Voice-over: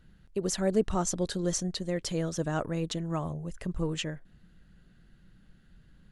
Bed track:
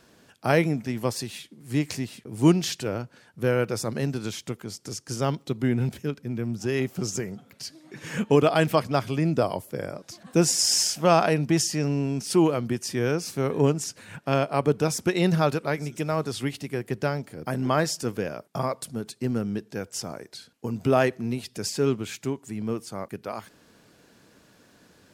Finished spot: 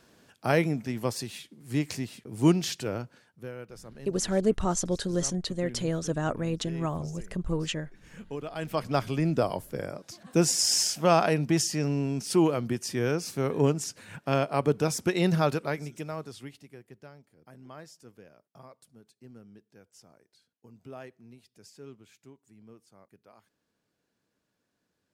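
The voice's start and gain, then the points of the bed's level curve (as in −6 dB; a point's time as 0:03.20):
3.70 s, +1.5 dB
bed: 0:03.12 −3 dB
0:03.52 −18 dB
0:08.48 −18 dB
0:08.91 −2.5 dB
0:15.60 −2.5 dB
0:17.07 −23 dB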